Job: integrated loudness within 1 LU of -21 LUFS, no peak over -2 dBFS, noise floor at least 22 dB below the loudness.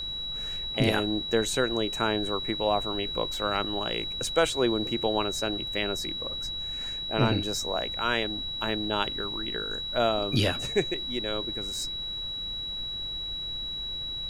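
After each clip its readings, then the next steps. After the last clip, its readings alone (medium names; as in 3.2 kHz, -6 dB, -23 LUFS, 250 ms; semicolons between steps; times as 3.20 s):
steady tone 3.9 kHz; tone level -32 dBFS; noise floor -35 dBFS; noise floor target -51 dBFS; loudness -28.5 LUFS; peak level -9.5 dBFS; loudness target -21.0 LUFS
-> band-stop 3.9 kHz, Q 30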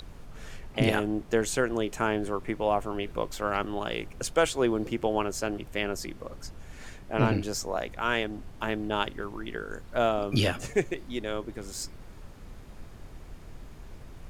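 steady tone not found; noise floor -47 dBFS; noise floor target -52 dBFS
-> noise print and reduce 6 dB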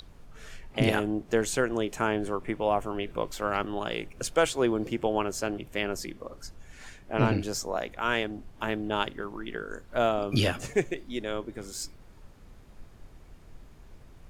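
noise floor -52 dBFS; loudness -30.0 LUFS; peak level -10.0 dBFS; loudness target -21.0 LUFS
-> trim +9 dB; peak limiter -2 dBFS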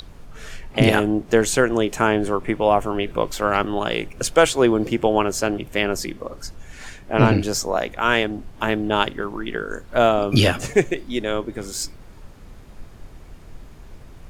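loudness -21.0 LUFS; peak level -2.0 dBFS; noise floor -43 dBFS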